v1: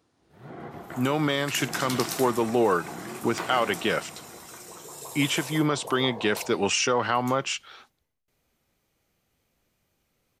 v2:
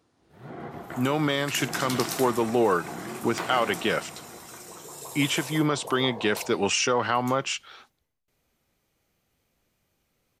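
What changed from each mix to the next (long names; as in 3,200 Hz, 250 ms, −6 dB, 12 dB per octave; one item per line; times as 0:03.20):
reverb: on, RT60 1.6 s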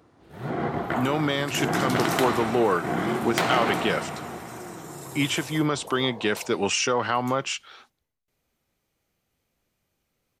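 first sound +11.0 dB
second sound −3.0 dB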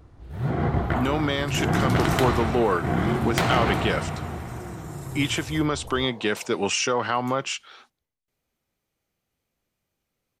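first sound: remove high-pass filter 220 Hz 12 dB per octave
second sound −4.0 dB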